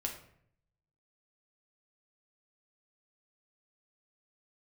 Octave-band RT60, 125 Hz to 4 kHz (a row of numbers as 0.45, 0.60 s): 1.1, 0.80, 0.70, 0.60, 0.60, 0.45 s